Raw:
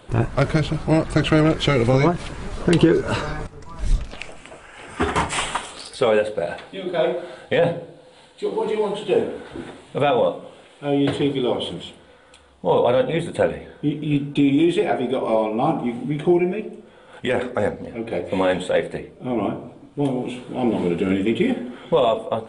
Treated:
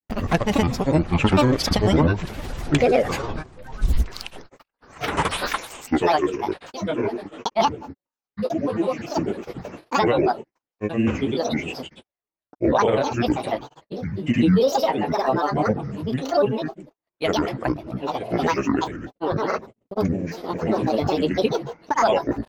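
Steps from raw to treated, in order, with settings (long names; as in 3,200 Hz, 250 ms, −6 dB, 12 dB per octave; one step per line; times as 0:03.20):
noise gate −37 dBFS, range −46 dB
granular cloud, pitch spread up and down by 12 semitones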